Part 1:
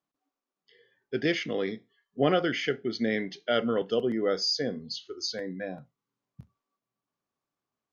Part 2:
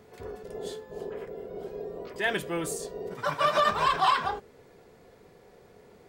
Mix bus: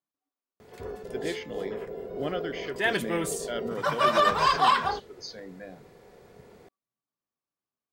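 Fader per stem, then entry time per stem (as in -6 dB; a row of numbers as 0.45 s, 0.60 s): -8.0 dB, +2.0 dB; 0.00 s, 0.60 s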